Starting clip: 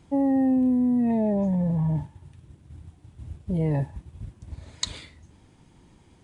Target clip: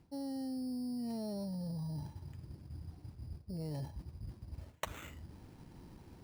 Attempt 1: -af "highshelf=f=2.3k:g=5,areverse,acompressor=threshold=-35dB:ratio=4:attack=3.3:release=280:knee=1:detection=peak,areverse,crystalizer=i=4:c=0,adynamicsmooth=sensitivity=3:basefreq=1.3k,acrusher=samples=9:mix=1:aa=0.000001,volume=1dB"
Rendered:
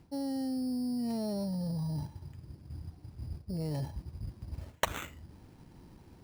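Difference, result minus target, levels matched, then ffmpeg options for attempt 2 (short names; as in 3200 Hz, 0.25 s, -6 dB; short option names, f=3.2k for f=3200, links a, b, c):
compressor: peak gain reduction -5.5 dB
-af "highshelf=f=2.3k:g=5,areverse,acompressor=threshold=-42.5dB:ratio=4:attack=3.3:release=280:knee=1:detection=peak,areverse,crystalizer=i=4:c=0,adynamicsmooth=sensitivity=3:basefreq=1.3k,acrusher=samples=9:mix=1:aa=0.000001,volume=1dB"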